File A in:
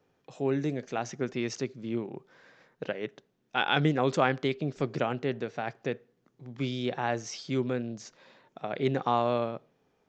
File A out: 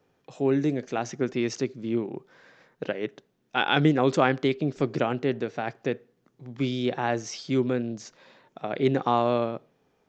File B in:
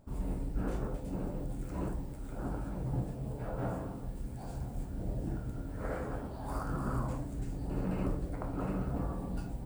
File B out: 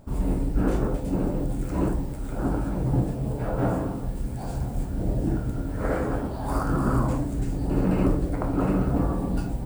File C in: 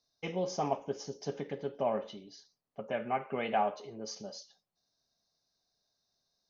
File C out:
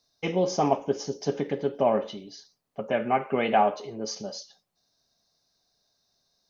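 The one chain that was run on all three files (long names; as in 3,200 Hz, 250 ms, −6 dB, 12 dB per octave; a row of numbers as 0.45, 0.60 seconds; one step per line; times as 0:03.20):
dynamic equaliser 310 Hz, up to +4 dB, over −45 dBFS, Q 1.8
loudness normalisation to −27 LKFS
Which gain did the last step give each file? +2.5, +10.5, +8.0 decibels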